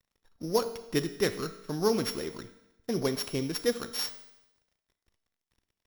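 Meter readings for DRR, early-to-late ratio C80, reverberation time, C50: 10.0 dB, 14.0 dB, 0.90 s, 12.0 dB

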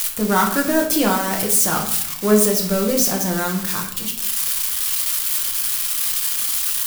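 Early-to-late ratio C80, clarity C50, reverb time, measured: 10.5 dB, 7.5 dB, 0.75 s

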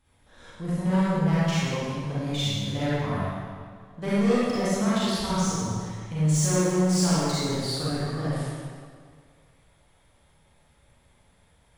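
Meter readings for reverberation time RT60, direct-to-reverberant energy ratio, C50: 2.0 s, -10.0 dB, -6.0 dB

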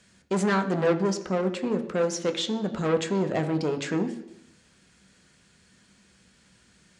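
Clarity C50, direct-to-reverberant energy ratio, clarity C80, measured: 12.0 dB, 6.0 dB, 14.0 dB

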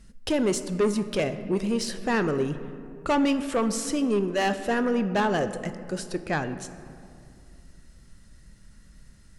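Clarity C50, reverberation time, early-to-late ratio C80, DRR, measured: 11.5 dB, 2.4 s, 13.0 dB, 10.0 dB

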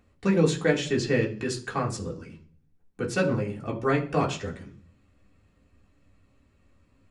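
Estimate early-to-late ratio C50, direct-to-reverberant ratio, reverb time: 12.5 dB, -3.0 dB, 0.45 s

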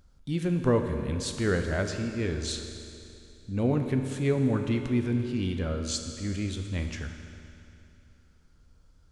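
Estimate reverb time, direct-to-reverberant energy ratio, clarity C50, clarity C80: 2.8 s, 5.0 dB, 6.5 dB, 7.0 dB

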